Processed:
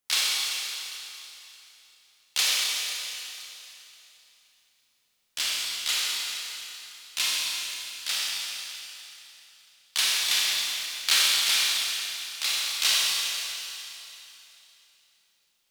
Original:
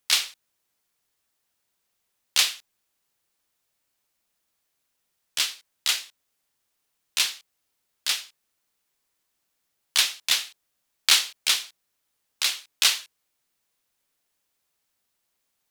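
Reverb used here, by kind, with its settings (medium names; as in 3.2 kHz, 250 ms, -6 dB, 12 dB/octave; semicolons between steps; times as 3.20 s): Schroeder reverb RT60 3.1 s, combs from 29 ms, DRR -6 dB; trim -6 dB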